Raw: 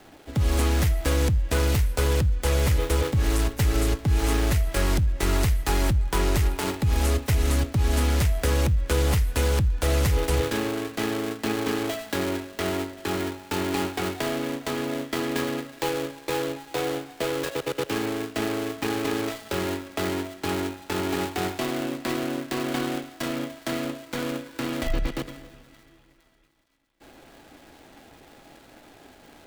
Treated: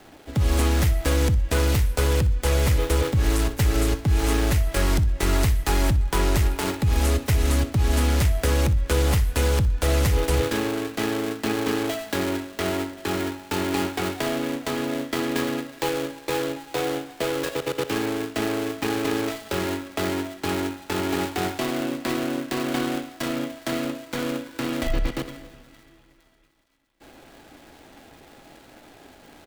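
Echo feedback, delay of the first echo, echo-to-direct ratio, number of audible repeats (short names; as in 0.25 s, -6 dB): 26%, 61 ms, -15.5 dB, 2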